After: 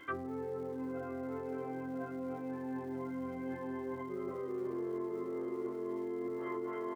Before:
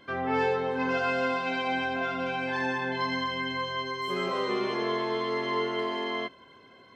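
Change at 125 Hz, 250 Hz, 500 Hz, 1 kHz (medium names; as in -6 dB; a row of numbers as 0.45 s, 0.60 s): -8.0 dB, -4.5 dB, -8.0 dB, -15.5 dB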